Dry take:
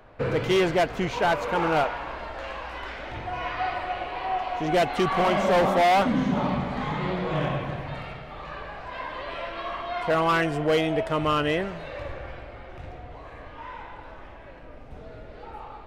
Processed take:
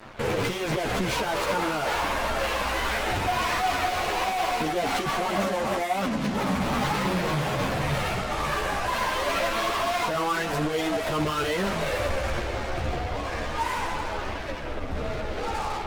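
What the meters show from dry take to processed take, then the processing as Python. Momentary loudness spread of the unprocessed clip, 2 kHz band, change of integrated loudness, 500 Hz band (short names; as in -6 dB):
21 LU, +2.5 dB, -1.0 dB, -2.0 dB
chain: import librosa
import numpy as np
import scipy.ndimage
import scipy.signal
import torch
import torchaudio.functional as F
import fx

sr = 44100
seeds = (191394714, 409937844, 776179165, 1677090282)

y = fx.over_compress(x, sr, threshold_db=-29.0, ratio=-1.0)
y = fx.fuzz(y, sr, gain_db=38.0, gate_db=-45.0)
y = fx.ensemble(y, sr)
y = F.gain(torch.from_numpy(y), -8.0).numpy()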